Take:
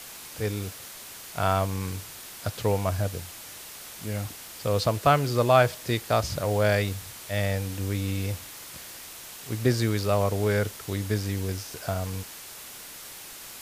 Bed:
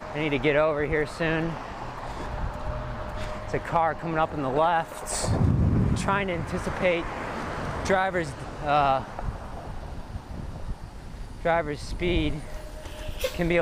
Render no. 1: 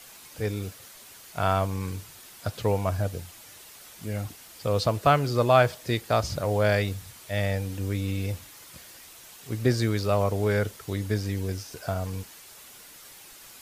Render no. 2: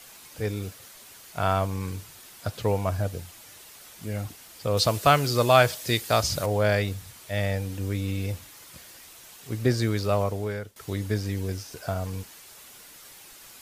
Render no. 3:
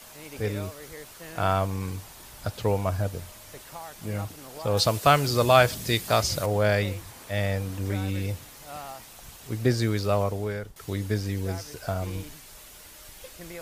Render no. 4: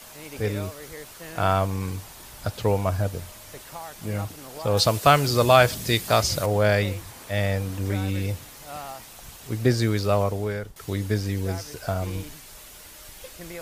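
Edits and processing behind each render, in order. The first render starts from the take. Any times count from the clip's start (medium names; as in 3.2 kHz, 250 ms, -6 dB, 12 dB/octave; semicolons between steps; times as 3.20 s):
noise reduction 7 dB, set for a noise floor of -43 dBFS
4.77–6.46 s: treble shelf 2.5 kHz +10 dB; 10.14–10.76 s: fade out, to -20.5 dB
add bed -18 dB
trim +2.5 dB; peak limiter -3 dBFS, peak gain reduction 1.5 dB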